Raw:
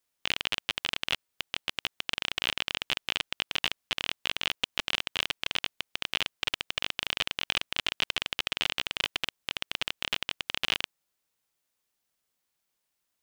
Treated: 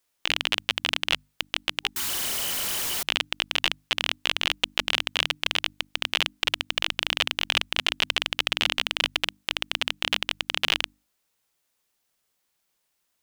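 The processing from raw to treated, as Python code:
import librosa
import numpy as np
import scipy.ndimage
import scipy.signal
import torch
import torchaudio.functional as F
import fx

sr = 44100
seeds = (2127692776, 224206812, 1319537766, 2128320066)

y = fx.clip_1bit(x, sr, at=(1.96, 3.03))
y = fx.hum_notches(y, sr, base_hz=50, count=6)
y = fx.spec_box(y, sr, start_s=1.8, length_s=0.28, low_hz=400.0, high_hz=800.0, gain_db=-17)
y = y * 10.0 ** (5.5 / 20.0)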